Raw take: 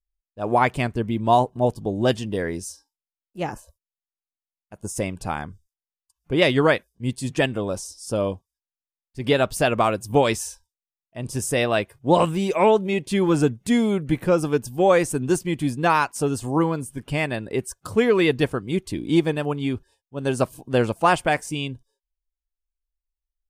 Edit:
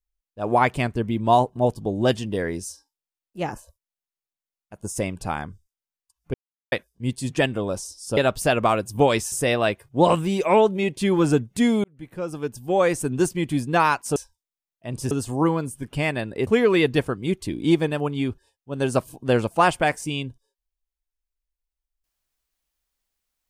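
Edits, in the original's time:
6.34–6.72 s: mute
8.17–9.32 s: delete
10.47–11.42 s: move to 16.26 s
13.94–15.26 s: fade in
17.62–17.92 s: delete

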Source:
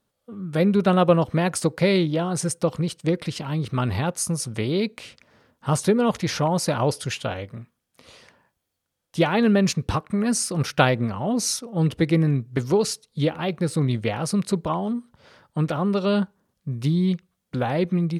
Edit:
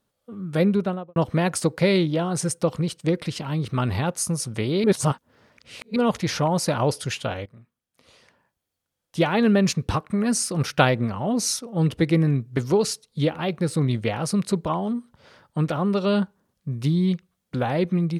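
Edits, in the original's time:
0.60–1.16 s: studio fade out
4.84–5.96 s: reverse
7.46–9.47 s: fade in, from -13 dB

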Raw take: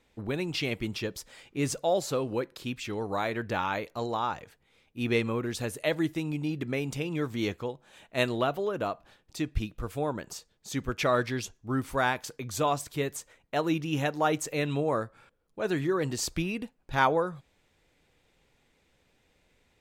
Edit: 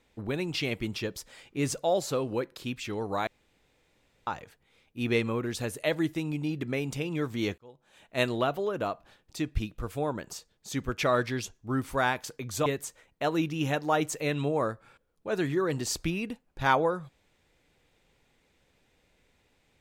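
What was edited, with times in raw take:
3.27–4.27 s: room tone
7.58–8.22 s: fade in
12.66–12.98 s: delete

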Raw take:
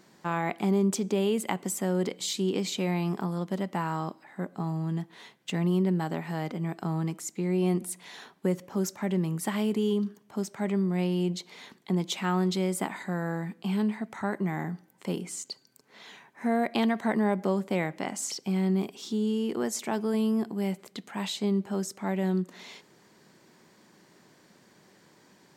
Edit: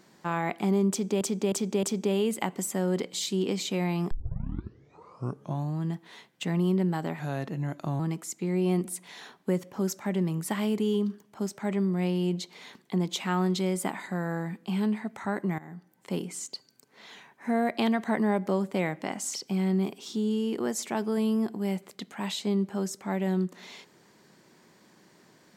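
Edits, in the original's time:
0.90–1.21 s: loop, 4 plays
3.18 s: tape start 1.68 s
6.26–6.96 s: speed 87%
14.55–15.09 s: fade in linear, from -18.5 dB

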